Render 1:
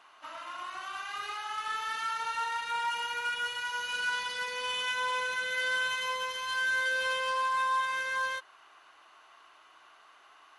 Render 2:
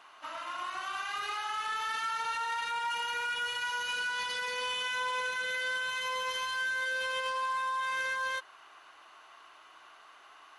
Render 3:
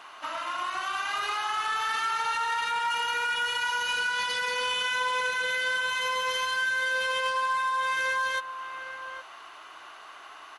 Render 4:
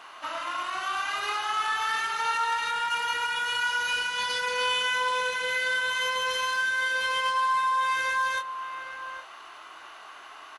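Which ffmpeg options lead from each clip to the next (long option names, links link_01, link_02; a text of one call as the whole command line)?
ffmpeg -i in.wav -af "alimiter=level_in=5dB:limit=-24dB:level=0:latency=1:release=27,volume=-5dB,volume=2.5dB" out.wav
ffmpeg -i in.wav -filter_complex "[0:a]asplit=2[link_01][link_02];[link_02]acompressor=threshold=-42dB:ratio=6,volume=-1dB[link_03];[link_01][link_03]amix=inputs=2:normalize=0,asplit=2[link_04][link_05];[link_05]adelay=816.3,volume=-9dB,highshelf=frequency=4000:gain=-18.4[link_06];[link_04][link_06]amix=inputs=2:normalize=0,volume=3dB" out.wav
ffmpeg -i in.wav -filter_complex "[0:a]asplit=2[link_01][link_02];[link_02]adelay=24,volume=-6.5dB[link_03];[link_01][link_03]amix=inputs=2:normalize=0" out.wav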